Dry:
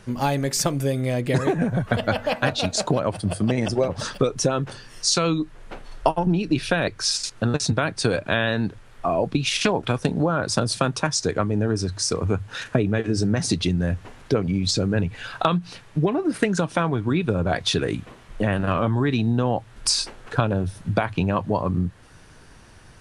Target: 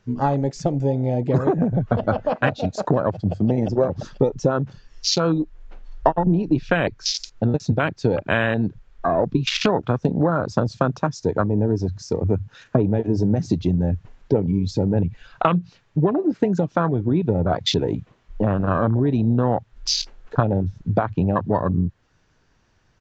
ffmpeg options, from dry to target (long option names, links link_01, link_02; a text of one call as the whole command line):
ffmpeg -i in.wav -af "aresample=16000,aresample=44100,afwtdn=0.0631,volume=2.5dB" out.wav